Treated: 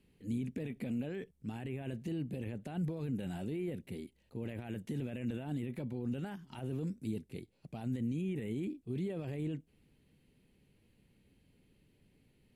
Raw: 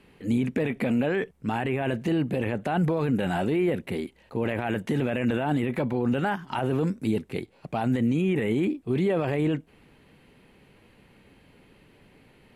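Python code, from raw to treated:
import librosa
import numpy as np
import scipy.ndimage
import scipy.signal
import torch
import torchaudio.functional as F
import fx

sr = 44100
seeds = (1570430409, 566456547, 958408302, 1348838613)

y = fx.peak_eq(x, sr, hz=1100.0, db=-15.0, octaves=2.7)
y = y * librosa.db_to_amplitude(-8.5)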